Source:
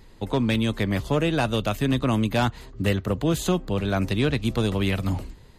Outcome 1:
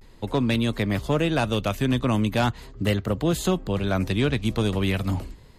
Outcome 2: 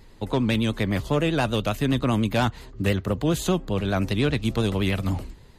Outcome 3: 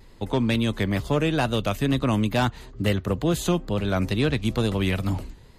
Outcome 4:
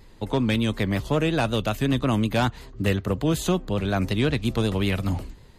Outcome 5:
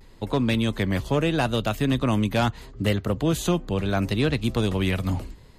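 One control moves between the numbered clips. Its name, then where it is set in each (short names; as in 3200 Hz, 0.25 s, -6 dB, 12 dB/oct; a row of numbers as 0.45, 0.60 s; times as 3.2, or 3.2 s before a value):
vibrato, rate: 0.4, 10, 2.2, 5.4, 0.77 Hz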